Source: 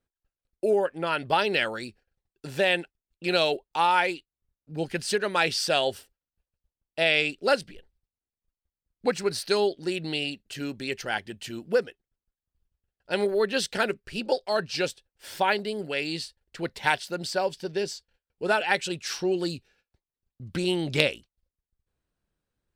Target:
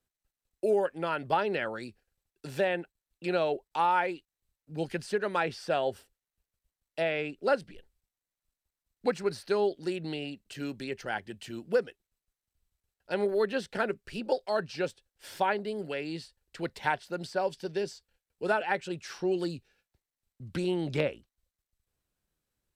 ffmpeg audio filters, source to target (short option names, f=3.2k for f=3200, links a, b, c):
-filter_complex "[0:a]acrossover=split=140|1900[a][b][c];[c]acompressor=threshold=-41dB:ratio=12[d];[a][b][d]amix=inputs=3:normalize=0,volume=-3dB" -ar 32000 -c:a sbc -b:a 192k